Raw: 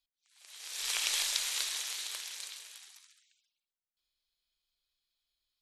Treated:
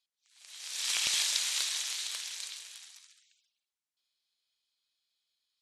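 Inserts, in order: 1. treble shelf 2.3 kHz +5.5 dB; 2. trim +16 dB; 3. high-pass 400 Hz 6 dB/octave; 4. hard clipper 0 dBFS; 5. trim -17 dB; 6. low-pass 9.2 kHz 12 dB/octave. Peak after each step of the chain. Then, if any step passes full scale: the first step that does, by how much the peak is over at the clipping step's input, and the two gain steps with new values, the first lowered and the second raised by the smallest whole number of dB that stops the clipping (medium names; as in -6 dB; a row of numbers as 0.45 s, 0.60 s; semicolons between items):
-6.5 dBFS, +9.5 dBFS, +9.5 dBFS, 0.0 dBFS, -17.0 dBFS, -16.0 dBFS; step 2, 9.5 dB; step 2 +6 dB, step 5 -7 dB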